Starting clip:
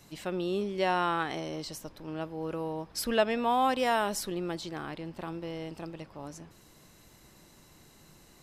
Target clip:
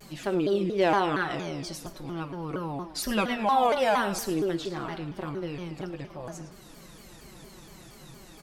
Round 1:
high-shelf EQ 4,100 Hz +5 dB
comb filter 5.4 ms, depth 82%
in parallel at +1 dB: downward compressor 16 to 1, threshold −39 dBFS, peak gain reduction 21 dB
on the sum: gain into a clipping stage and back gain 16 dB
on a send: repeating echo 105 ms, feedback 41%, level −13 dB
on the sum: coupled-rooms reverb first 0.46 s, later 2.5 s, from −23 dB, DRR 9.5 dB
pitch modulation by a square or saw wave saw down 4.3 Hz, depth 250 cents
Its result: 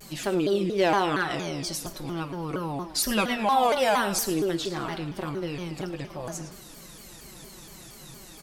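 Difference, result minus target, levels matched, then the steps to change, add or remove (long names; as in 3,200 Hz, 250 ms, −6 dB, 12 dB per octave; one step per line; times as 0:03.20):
downward compressor: peak gain reduction −10.5 dB; 8,000 Hz band +6.5 dB
change: high-shelf EQ 4,100 Hz −3.5 dB
change: downward compressor 16 to 1, threshold −50.5 dBFS, peak gain reduction 31.5 dB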